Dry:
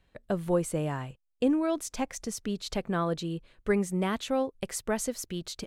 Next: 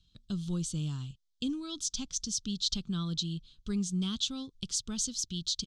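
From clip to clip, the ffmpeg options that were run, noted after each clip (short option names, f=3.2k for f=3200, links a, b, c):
-af "firequalizer=gain_entry='entry(170,0);entry(570,-29);entry(1300,-11);entry(1900,-26);entry(3300,9);entry(6200,8);entry(12000,-19)':delay=0.05:min_phase=1"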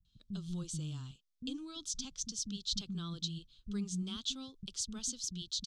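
-filter_complex "[0:a]acrossover=split=270[a][b];[b]adelay=50[c];[a][c]amix=inputs=2:normalize=0,volume=-5dB"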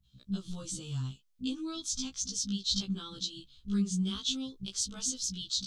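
-af "afftfilt=real='re*1.73*eq(mod(b,3),0)':imag='im*1.73*eq(mod(b,3),0)':win_size=2048:overlap=0.75,volume=7.5dB"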